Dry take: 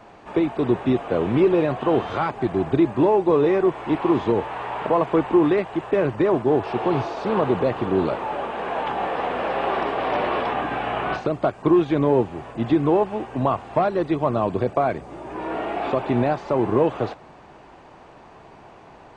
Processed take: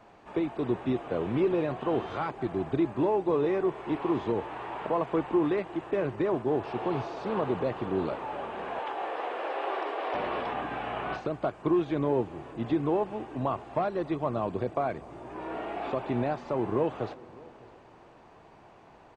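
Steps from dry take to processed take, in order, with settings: 8.79–10.14 steep high-pass 300 Hz 48 dB/oct; echo 0.603 s -23.5 dB; on a send at -22 dB: reverb RT60 4.5 s, pre-delay 0.149 s; on the sum: gain -8.5 dB

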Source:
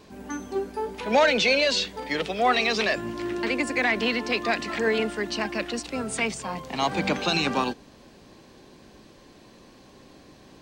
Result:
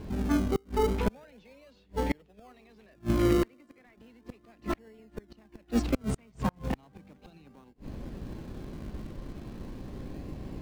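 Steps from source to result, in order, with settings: 3.45–3.96 HPF 110 Hz -> 400 Hz 12 dB/oct; flipped gate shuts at -20 dBFS, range -36 dB; RIAA curve playback; in parallel at -7 dB: decimation with a swept rate 35×, swing 100% 0.36 Hz

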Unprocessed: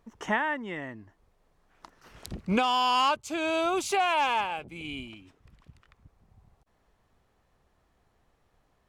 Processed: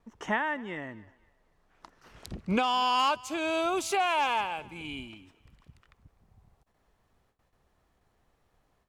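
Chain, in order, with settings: high shelf 10000 Hz -5.5 dB, from 2.99 s +3 dB; gate with hold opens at -59 dBFS; thinning echo 0.251 s, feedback 31%, high-pass 390 Hz, level -22 dB; gain -1.5 dB

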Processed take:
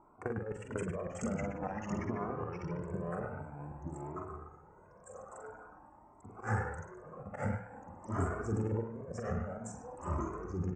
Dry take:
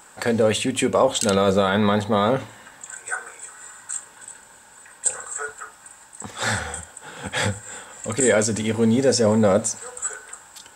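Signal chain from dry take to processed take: Wiener smoothing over 25 samples; LPF 6100 Hz 24 dB/oct; bell 230 Hz +4.5 dB 2.6 oct; notches 60/120/180/240 Hz; negative-ratio compressor -21 dBFS, ratio -0.5; auto swell 0.109 s; doubler 44 ms -6 dB; narrowing echo 0.103 s, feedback 42%, band-pass 1700 Hz, level -4 dB; echoes that change speed 0.45 s, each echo -3 st, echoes 2; Butterworth band-stop 3800 Hz, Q 0.57; cascading flanger rising 0.49 Hz; gain -8.5 dB

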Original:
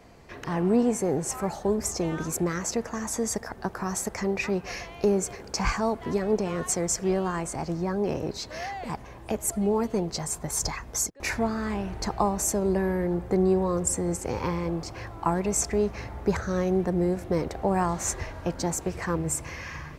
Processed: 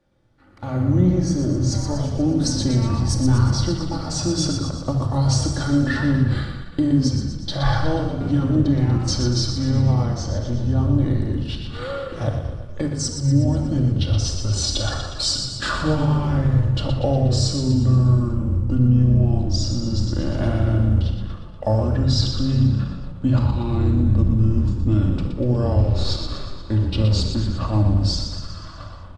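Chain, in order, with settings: speed glide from 76% -> 61%; gate -35 dBFS, range -12 dB; bell 120 Hz +11 dB 0.5 oct; frequency-shifting echo 0.12 s, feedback 58%, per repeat -30 Hz, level -7 dB; shoebox room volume 2600 m³, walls furnished, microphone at 2.4 m; AGC gain up to 10 dB; ending taper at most 240 dB/s; gain -5.5 dB

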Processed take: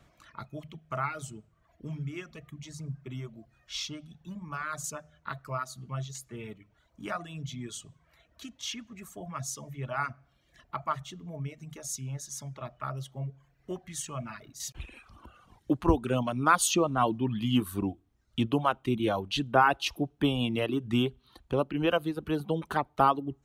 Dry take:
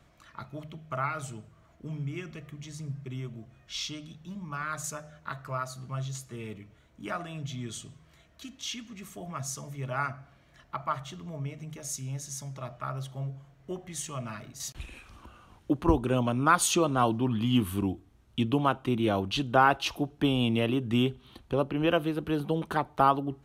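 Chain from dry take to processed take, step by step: reverb removal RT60 0.93 s

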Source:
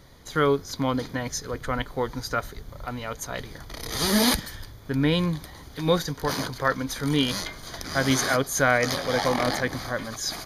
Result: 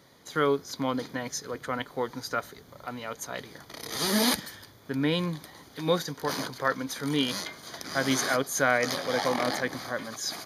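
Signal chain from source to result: HPF 170 Hz 12 dB/oct; gain -3 dB

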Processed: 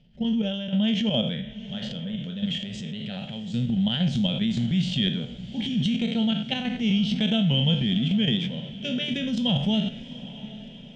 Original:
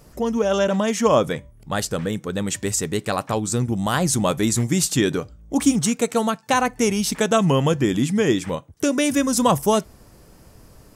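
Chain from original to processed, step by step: spectral trails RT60 0.45 s; resonant low shelf 310 Hz +8 dB, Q 3; level quantiser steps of 12 dB; ladder low-pass 3300 Hz, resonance 85%; fixed phaser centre 300 Hz, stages 6; transient shaper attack -1 dB, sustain +7 dB; diffused feedback echo 0.748 s, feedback 55%, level -15.5 dB; gain +4.5 dB

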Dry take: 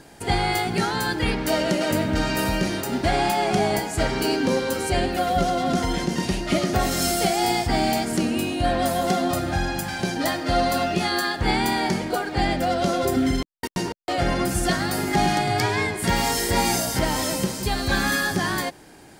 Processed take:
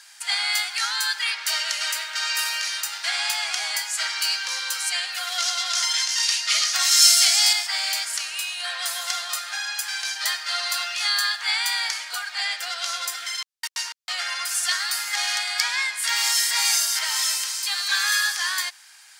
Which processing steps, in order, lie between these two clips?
HPF 1200 Hz 24 dB/oct; bell 5600 Hz +8.5 dB 1.9 oct, from 5.32 s +15 dB, from 7.53 s +7.5 dB

